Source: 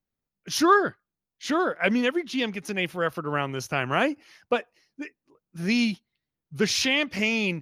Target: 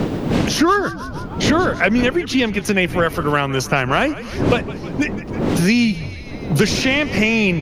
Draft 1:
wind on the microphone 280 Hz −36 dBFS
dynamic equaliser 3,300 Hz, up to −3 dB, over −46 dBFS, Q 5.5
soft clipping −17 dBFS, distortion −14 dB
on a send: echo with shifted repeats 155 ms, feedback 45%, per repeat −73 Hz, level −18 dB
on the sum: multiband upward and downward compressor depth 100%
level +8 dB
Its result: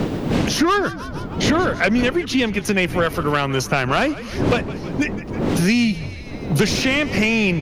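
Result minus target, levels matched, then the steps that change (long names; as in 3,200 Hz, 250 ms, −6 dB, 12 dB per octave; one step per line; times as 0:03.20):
soft clipping: distortion +14 dB
change: soft clipping −7 dBFS, distortion −28 dB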